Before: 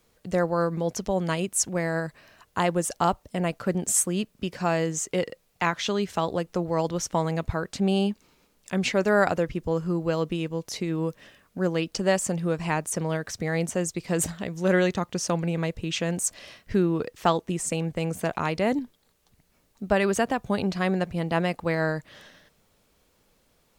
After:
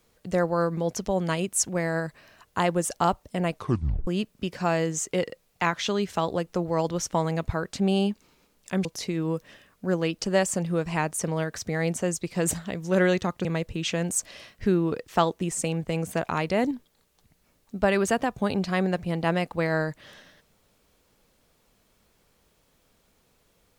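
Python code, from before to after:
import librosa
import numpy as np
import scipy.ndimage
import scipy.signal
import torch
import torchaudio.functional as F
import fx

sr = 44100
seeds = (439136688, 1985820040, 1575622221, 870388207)

y = fx.edit(x, sr, fx.tape_stop(start_s=3.54, length_s=0.53),
    fx.cut(start_s=8.85, length_s=1.73),
    fx.cut(start_s=15.18, length_s=0.35), tone=tone)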